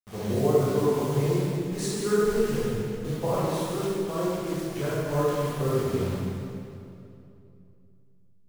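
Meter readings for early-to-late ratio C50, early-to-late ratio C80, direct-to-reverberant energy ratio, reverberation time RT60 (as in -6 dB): -5.0 dB, -2.0 dB, -9.5 dB, 2.7 s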